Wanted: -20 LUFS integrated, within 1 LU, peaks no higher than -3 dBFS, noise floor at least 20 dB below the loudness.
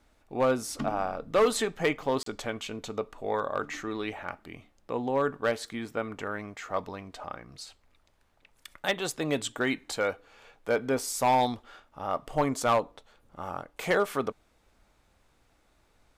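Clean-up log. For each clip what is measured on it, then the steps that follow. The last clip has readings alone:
clipped samples 0.4%; clipping level -17.5 dBFS; dropouts 1; longest dropout 33 ms; loudness -30.0 LUFS; peak level -17.5 dBFS; loudness target -20.0 LUFS
-> clip repair -17.5 dBFS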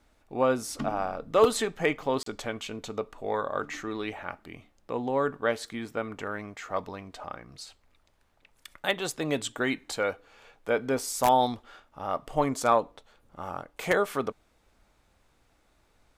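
clipped samples 0.0%; dropouts 1; longest dropout 33 ms
-> interpolate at 2.23 s, 33 ms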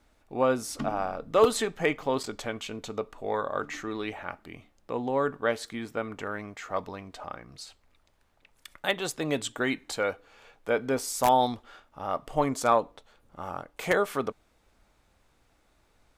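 dropouts 0; loudness -29.5 LUFS; peak level -8.5 dBFS; loudness target -20.0 LUFS
-> trim +9.5 dB; peak limiter -3 dBFS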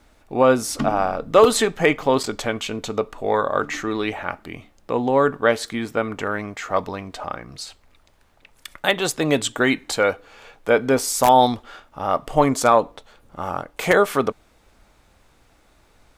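loudness -20.5 LUFS; peak level -3.0 dBFS; noise floor -57 dBFS

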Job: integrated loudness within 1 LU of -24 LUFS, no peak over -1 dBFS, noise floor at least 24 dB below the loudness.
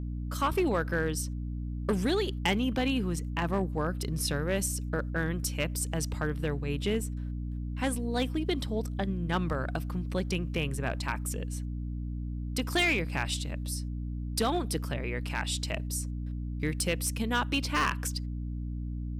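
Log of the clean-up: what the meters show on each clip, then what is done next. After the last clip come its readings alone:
clipped samples 0.4%; clipping level -20.5 dBFS; hum 60 Hz; highest harmonic 300 Hz; hum level -32 dBFS; loudness -31.5 LUFS; peak level -20.5 dBFS; loudness target -24.0 LUFS
-> clip repair -20.5 dBFS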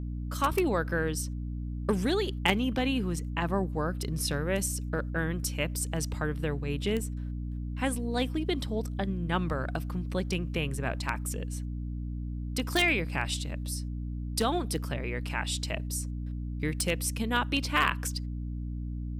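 clipped samples 0.0%; hum 60 Hz; highest harmonic 300 Hz; hum level -32 dBFS
-> de-hum 60 Hz, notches 5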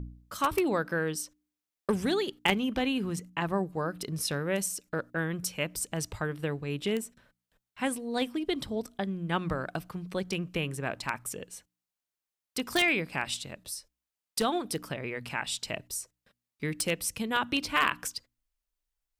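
hum not found; loudness -31.5 LUFS; peak level -10.5 dBFS; loudness target -24.0 LUFS
-> trim +7.5 dB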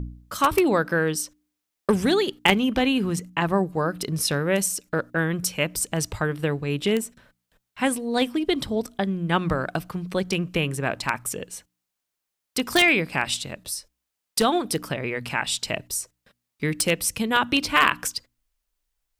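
loudness -24.0 LUFS; peak level -3.0 dBFS; noise floor -83 dBFS

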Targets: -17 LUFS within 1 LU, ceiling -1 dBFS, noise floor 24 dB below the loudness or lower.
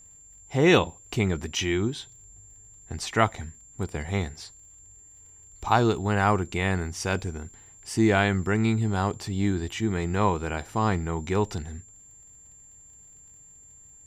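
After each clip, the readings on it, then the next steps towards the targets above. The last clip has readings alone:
tick rate 47 per s; steady tone 7.3 kHz; tone level -49 dBFS; loudness -26.0 LUFS; peak level -5.5 dBFS; loudness target -17.0 LUFS
-> de-click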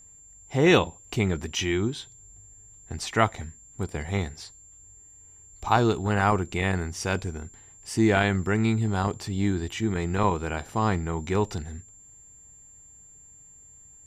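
tick rate 0.071 per s; steady tone 7.3 kHz; tone level -49 dBFS
-> band-stop 7.3 kHz, Q 30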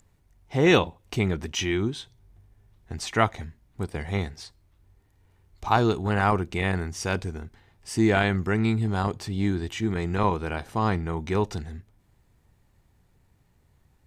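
steady tone not found; loudness -26.0 LUFS; peak level -5.5 dBFS; loudness target -17.0 LUFS
-> trim +9 dB; peak limiter -1 dBFS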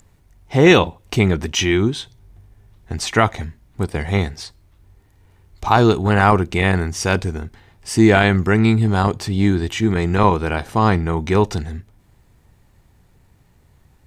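loudness -17.5 LUFS; peak level -1.0 dBFS; noise floor -55 dBFS

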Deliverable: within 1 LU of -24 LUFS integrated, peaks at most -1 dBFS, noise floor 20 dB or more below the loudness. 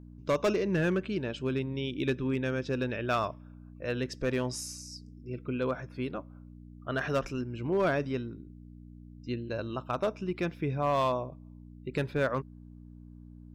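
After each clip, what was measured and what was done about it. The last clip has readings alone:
clipped samples 0.5%; clipping level -21.0 dBFS; hum 60 Hz; highest harmonic 300 Hz; hum level -48 dBFS; loudness -32.0 LUFS; peak level -21.0 dBFS; loudness target -24.0 LUFS
-> clip repair -21 dBFS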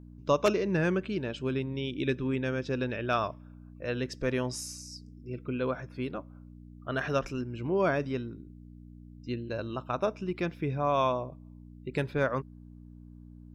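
clipped samples 0.0%; hum 60 Hz; highest harmonic 300 Hz; hum level -48 dBFS
-> de-hum 60 Hz, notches 5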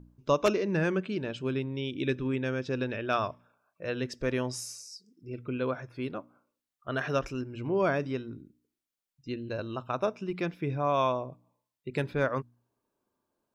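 hum not found; loudness -31.5 LUFS; peak level -12.0 dBFS; loudness target -24.0 LUFS
-> trim +7.5 dB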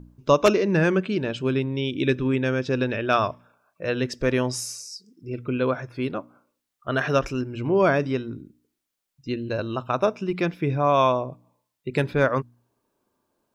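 loudness -24.0 LUFS; peak level -4.5 dBFS; noise floor -82 dBFS

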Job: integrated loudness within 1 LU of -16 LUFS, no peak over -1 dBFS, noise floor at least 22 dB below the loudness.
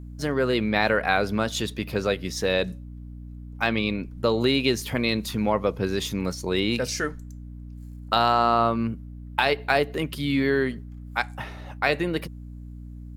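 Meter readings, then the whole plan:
hum 60 Hz; highest harmonic 300 Hz; hum level -37 dBFS; loudness -25.0 LUFS; peak level -6.0 dBFS; loudness target -16.0 LUFS
-> hum notches 60/120/180/240/300 Hz; trim +9 dB; peak limiter -1 dBFS

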